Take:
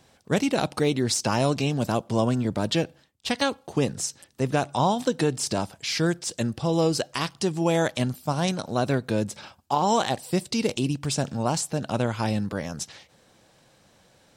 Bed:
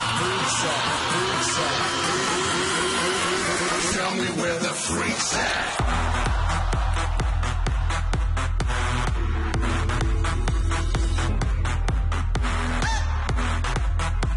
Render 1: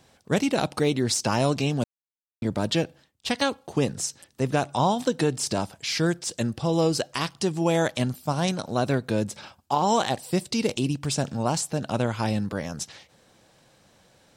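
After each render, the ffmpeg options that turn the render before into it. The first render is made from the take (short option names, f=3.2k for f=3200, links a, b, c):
-filter_complex "[0:a]asplit=3[a][b][c];[a]atrim=end=1.84,asetpts=PTS-STARTPTS,afade=t=out:st=1.836:d=0.004:c=hsin[d];[b]atrim=start=1.84:end=2.42,asetpts=PTS-STARTPTS,volume=0[e];[c]atrim=start=2.42,asetpts=PTS-STARTPTS,afade=t=in:d=0.004:c=hsin[f];[d][e][f]concat=n=3:v=0:a=1"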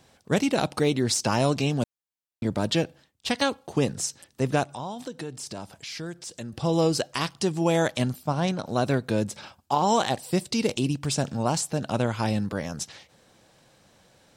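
-filter_complex "[0:a]asettb=1/sr,asplit=3[a][b][c];[a]atrim=end=4.634[d];[b]atrim=start=4.63:end=6.53,asetpts=PTS-STARTPTS,afade=t=in:d=0.004:c=qsin,afade=t=out:st=1.896:d=0.004:c=qsin,acompressor=threshold=-41dB:ratio=2:attack=3.2:release=140:knee=1:detection=peak[e];[c]atrim=start=6.526[f];[d][e]acrossfade=d=0.004:c1=hsin:c2=qsin[g];[g][f]acrossfade=d=0.004:c1=qsin:c2=hsin,asettb=1/sr,asplit=3[h][i][j];[h]atrim=end=8.234[k];[i]atrim=start=8.23:end=8.66,asetpts=PTS-STARTPTS,afade=t=in:d=0.004:c=qsin,afade=t=out:st=0.426:d=0.004:c=qsin,lowpass=f=3k:p=1[l];[j]atrim=start=8.656[m];[k][l]acrossfade=d=0.004:c1=hsin:c2=qsin[n];[n][m]acrossfade=d=0.004:c1=qsin:c2=hsin"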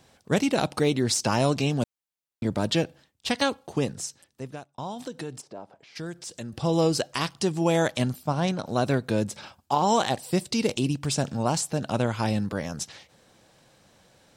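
-filter_complex "[0:a]asplit=3[a][b][c];[a]afade=t=out:st=5.4:d=0.02[d];[b]bandpass=f=560:t=q:w=0.98,afade=t=in:st=5.4:d=0.02,afade=t=out:st=5.95:d=0.02[e];[c]afade=t=in:st=5.95:d=0.02[f];[d][e][f]amix=inputs=3:normalize=0,asplit=2[g][h];[g]atrim=end=4.78,asetpts=PTS-STARTPTS,afade=t=out:st=3.51:d=1.27[i];[h]atrim=start=4.78,asetpts=PTS-STARTPTS,afade=t=in:d=0.004:c=hsin[j];[i][j]concat=n=2:v=0:a=1"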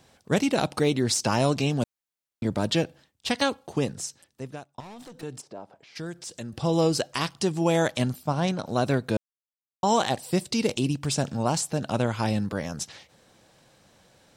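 -filter_complex "[0:a]asettb=1/sr,asplit=3[a][b][c];[a]atrim=end=4.804[d];[b]atrim=start=4.8:end=5.23,asetpts=PTS-STARTPTS,afade=t=in:d=0.004:c=qsin,afade=t=out:st=0.426:d=0.004:c=qsin,aeval=exprs='(tanh(112*val(0)+0.2)-tanh(0.2))/112':c=same[e];[c]atrim=start=5.226[f];[d][e]acrossfade=d=0.004:c1=hsin:c2=qsin[g];[g][f]acrossfade=d=0.004:c1=qsin:c2=hsin,asplit=3[h][i][j];[h]atrim=end=9.17,asetpts=PTS-STARTPTS,afade=t=out:st=9.166:d=0.004:c=hsin[k];[i]atrim=start=9.17:end=9.83,asetpts=PTS-STARTPTS,volume=0[l];[j]atrim=start=9.83,asetpts=PTS-STARTPTS,afade=t=in:d=0.004:c=hsin[m];[k][l][m]concat=n=3:v=0:a=1"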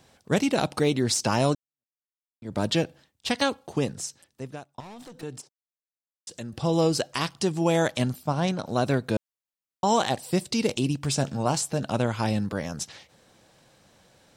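-filter_complex "[0:a]asettb=1/sr,asplit=3[a][b][c];[a]atrim=end=11.024[d];[b]atrim=start=11.02:end=11.85,asetpts=PTS-STARTPTS,afade=t=in:d=0.004:c=qsin,afade=t=out:st=0.826:d=0.004:c=qsin,asplit=2[e][f];[f]adelay=15,volume=-12.5dB[g];[e][g]amix=inputs=2:normalize=0,atrim=end_sample=36603[h];[c]atrim=start=11.846[i];[d][h]acrossfade=d=0.004:c1=hsin:c2=qsin[j];[j][i]acrossfade=d=0.004:c1=qsin:c2=hsin,asplit=4[k][l][m][n];[k]atrim=end=1.55,asetpts=PTS-STARTPTS,afade=t=out:st=1.546:d=0.004:c=hsin[o];[l]atrim=start=1.55:end=5.49,asetpts=PTS-STARTPTS,afade=t=in:d=1.03:c=exp,afade=t=out:st=3.936:d=0.004:c=hsin[p];[m]atrim=start=5.49:end=6.27,asetpts=PTS-STARTPTS,volume=0[q];[n]atrim=start=6.27,asetpts=PTS-STARTPTS,afade=t=in:d=0.004:c=hsin[r];[o][p][q][r]concat=n=4:v=0:a=1"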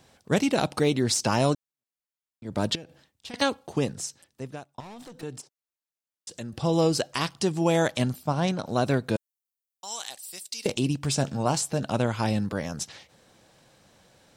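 -filter_complex "[0:a]asettb=1/sr,asplit=3[a][b][c];[a]atrim=end=2.754[d];[b]atrim=start=2.75:end=3.34,asetpts=PTS-STARTPTS,afade=t=in:d=0.004:c=qsin,afade=t=out:st=0.586:d=0.004:c=qsin,acompressor=threshold=-38dB:ratio=6:attack=3.2:release=140:knee=1:detection=peak[e];[c]atrim=start=3.336[f];[d][e]acrossfade=d=0.004:c1=hsin:c2=qsin[g];[g][f]acrossfade=d=0.004:c1=qsin:c2=hsin,asettb=1/sr,asplit=3[h][i][j];[h]atrim=end=9.164[k];[i]atrim=start=9.16:end=10.66,asetpts=PTS-STARTPTS,afade=t=in:d=0.004:c=qsin,afade=t=out:st=1.496:d=0.004:c=qsin,aderivative[l];[j]atrim=start=10.656[m];[k][l]acrossfade=d=0.004:c1=hsin:c2=qsin[n];[n][m]acrossfade=d=0.004:c1=qsin:c2=hsin"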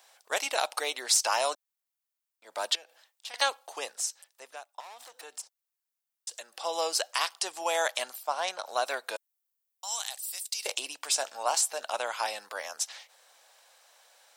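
-af "highpass=f=650:w=0.5412,highpass=f=650:w=1.3066,highshelf=f=9.6k:g=8.5"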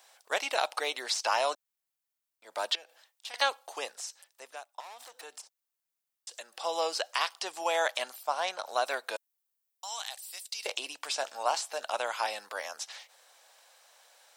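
-filter_complex "[0:a]acrossover=split=4900[a][b];[b]acompressor=threshold=-43dB:ratio=4:attack=1:release=60[c];[a][c]amix=inputs=2:normalize=0"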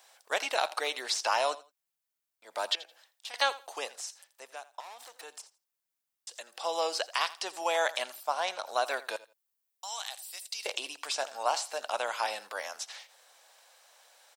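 -af "aecho=1:1:83|166:0.126|0.0252"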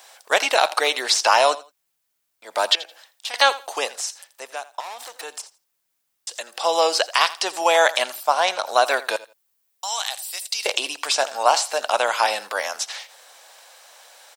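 -af "volume=12dB,alimiter=limit=-2dB:level=0:latency=1"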